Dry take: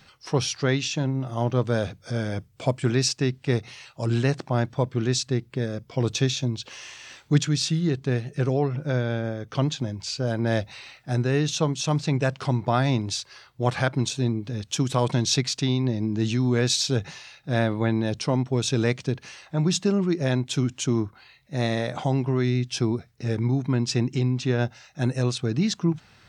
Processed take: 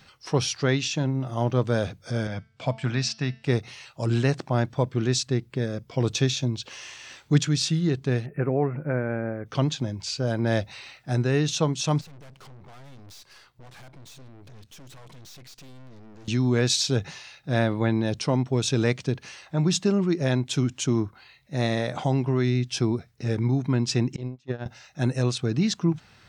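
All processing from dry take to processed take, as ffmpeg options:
-filter_complex "[0:a]asettb=1/sr,asplit=3[a][b][c];[a]atrim=end=2.274[d];[b]atrim=start=2.27:end=3.44,asetpts=PTS-STARTPTS,afade=t=in:d=0.004:c=qsin,afade=t=out:st=1.166:d=0.004:c=qsin,highpass=100,lowpass=4.8k,equalizer=f=370:t=o:w=0.8:g=-11,bandreject=f=222.9:t=h:w=4,bandreject=f=445.8:t=h:w=4,bandreject=f=668.7:t=h:w=4,bandreject=f=891.6:t=h:w=4,bandreject=f=1.1145k:t=h:w=4,bandreject=f=1.3374k:t=h:w=4,bandreject=f=1.5603k:t=h:w=4,bandreject=f=1.7832k:t=h:w=4,bandreject=f=2.0061k:t=h:w=4,bandreject=f=2.229k:t=h:w=4,bandreject=f=2.4519k:t=h:w=4,bandreject=f=2.6748k:t=h:w=4,bandreject=f=2.8977k:t=h:w=4,bandreject=f=3.1206k:t=h:w=4,bandreject=f=3.3435k:t=h:w=4,bandreject=f=3.5664k:t=h:w=4,bandreject=f=3.7893k:t=h:w=4,bandreject=f=4.0122k:t=h:w=4,bandreject=f=4.2351k:t=h:w=4,bandreject=f=4.458k:t=h:w=4,bandreject=f=4.6809k:t=h:w=4,bandreject=f=4.9038k:t=h:w=4,bandreject=f=5.1267k:t=h:w=4,bandreject=f=5.3496k:t=h:w=4,bandreject=f=5.5725k:t=h:w=4,bandreject=f=5.7954k:t=h:w=4[e];[c]atrim=start=3.436[f];[d][e]acrossfade=d=0.004:c1=hsin:c2=qsin[g];[g][f]acrossfade=d=0.004:c1=qsin:c2=hsin,asettb=1/sr,asplit=3[h][i][j];[h]atrim=end=8.264[k];[i]atrim=start=8.26:end=9.46,asetpts=PTS-STARTPTS,afade=t=in:d=0.004:c=qsin,afade=t=out:st=1.196:d=0.004:c=qsin,asuperstop=centerf=5400:order=12:qfactor=0.66,equalizer=f=120:w=4.6:g=-5[l];[j]atrim=start=9.456[m];[k][l]acrossfade=d=0.004:c1=hsin:c2=qsin[n];[n][m]acrossfade=d=0.004:c1=qsin:c2=hsin,asettb=1/sr,asplit=3[o][p][q];[o]atrim=end=12.014[r];[p]atrim=start=12.01:end=16.28,asetpts=PTS-STARTPTS,afade=t=in:d=0.004:c=qsin,afade=t=out:st=4.266:d=0.004:c=qsin,acompressor=threshold=-34dB:ratio=2.5:attack=3.2:release=140:knee=1:detection=peak,aeval=exprs='(tanh(200*val(0)+0.7)-tanh(0.7))/200':c=same[s];[q]atrim=start=16.276[t];[r][s]acrossfade=d=0.004:c1=hsin:c2=qsin[u];[u][t]acrossfade=d=0.004:c1=qsin:c2=hsin,asettb=1/sr,asplit=3[v][w][x];[v]atrim=end=24.164[y];[w]atrim=start=24.16:end=24.66,asetpts=PTS-STARTPTS,afade=t=in:d=0.004:c=qsin,afade=t=out:st=0.496:d=0.004:c=qsin,agate=range=-30dB:threshold=-21dB:ratio=16:release=100:detection=peak,acrossover=split=3200[z][aa];[aa]acompressor=threshold=-57dB:ratio=4:attack=1:release=60[ab];[z][ab]amix=inputs=2:normalize=0[ac];[x]atrim=start=24.656[ad];[y][ac]acrossfade=d=0.004:c1=hsin:c2=qsin[ae];[ae][ad]acrossfade=d=0.004:c1=qsin:c2=hsin"

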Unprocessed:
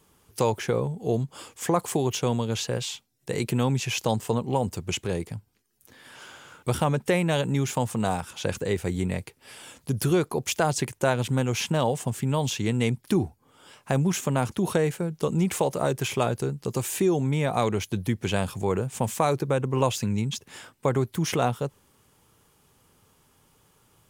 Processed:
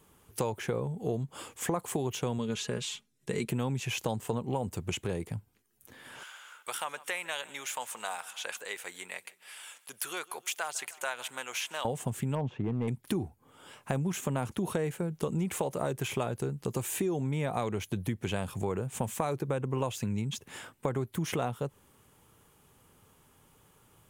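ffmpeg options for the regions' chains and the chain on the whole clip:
-filter_complex "[0:a]asettb=1/sr,asplit=3[a][b][c];[a]atrim=end=2.384[d];[b]atrim=start=2.38:end=3.49,asetpts=PTS-STARTPTS,afade=t=in:d=0.004:c=qsin,afade=t=out:st=1.106:d=0.004:c=qsin,lowpass=10k,equalizer=f=740:w=2.1:g=-8,aecho=1:1:4.8:0.5,atrim=end_sample=48951[e];[c]atrim=start=3.486[f];[d][e]acrossfade=d=0.004:c1=hsin:c2=qsin[g];[g][f]acrossfade=d=0.004:c1=qsin:c2=hsin,asettb=1/sr,asplit=3[h][i][j];[h]atrim=end=6.234[k];[i]atrim=start=6.23:end=11.85,asetpts=PTS-STARTPTS,afade=t=in:d=0.004:c=qsin,afade=t=out:st=5.616:d=0.004:c=qsin,highpass=1.2k,aecho=1:1:153|306|459|612:0.0794|0.0461|0.0267|0.0155,atrim=end_sample=247842[l];[j]atrim=start=11.846[m];[k][l]acrossfade=d=0.004:c1=hsin:c2=qsin[n];[n][m]acrossfade=d=0.004:c1=qsin:c2=hsin,asettb=1/sr,asplit=3[o][p][q];[o]atrim=end=12.354[r];[p]atrim=start=12.35:end=12.88,asetpts=PTS-STARTPTS,afade=t=in:d=0.004:c=qsin,afade=t=out:st=0.526:d=0.004:c=qsin,lowpass=1.1k,volume=19.5dB,asoftclip=hard,volume=-19.5dB[s];[q]atrim=start=12.876[t];[r][s]acrossfade=d=0.004:c1=hsin:c2=qsin[u];[u][t]acrossfade=d=0.004:c1=qsin:c2=hsin,acompressor=threshold=-30dB:ratio=3,equalizer=f=5k:t=o:w=0.76:g=-6"

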